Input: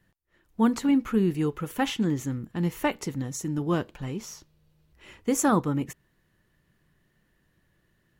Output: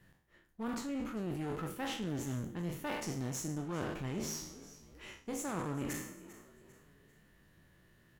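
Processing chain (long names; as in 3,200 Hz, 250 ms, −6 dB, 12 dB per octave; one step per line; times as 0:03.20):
peak hold with a decay on every bin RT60 0.61 s
reversed playback
downward compressor 16 to 1, threshold −34 dBFS, peak gain reduction 19.5 dB
reversed playback
echo with shifted repeats 396 ms, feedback 38%, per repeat +46 Hz, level −18.5 dB
asymmetric clip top −43.5 dBFS
level +1.5 dB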